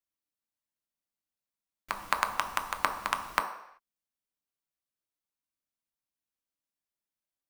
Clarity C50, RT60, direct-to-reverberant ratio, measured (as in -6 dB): 9.5 dB, 0.75 s, 4.0 dB